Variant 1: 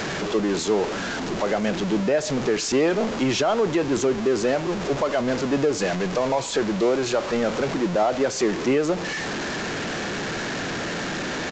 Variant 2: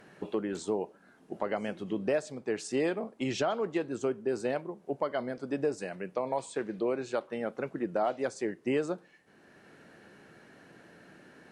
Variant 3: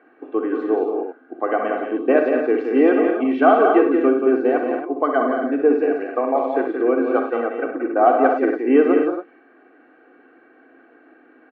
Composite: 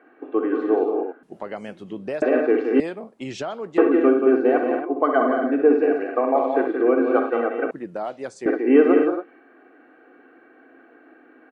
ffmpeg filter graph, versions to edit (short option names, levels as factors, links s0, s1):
-filter_complex "[1:a]asplit=3[s0][s1][s2];[2:a]asplit=4[s3][s4][s5][s6];[s3]atrim=end=1.232[s7];[s0]atrim=start=1.228:end=2.222[s8];[s4]atrim=start=2.218:end=2.802[s9];[s1]atrim=start=2.798:end=3.782[s10];[s5]atrim=start=3.778:end=7.712[s11];[s2]atrim=start=7.708:end=8.462[s12];[s6]atrim=start=8.458[s13];[s7][s8]acrossfade=d=0.004:c1=hsin:c2=hsin[s14];[s14][s9]acrossfade=d=0.004:c1=hsin:c2=hsin[s15];[s15][s10]acrossfade=d=0.004:c1=hsin:c2=hsin[s16];[s16][s11]acrossfade=d=0.004:c1=hsin:c2=hsin[s17];[s17][s12]acrossfade=d=0.004:c1=hsin:c2=hsin[s18];[s18][s13]acrossfade=d=0.004:c1=hsin:c2=hsin"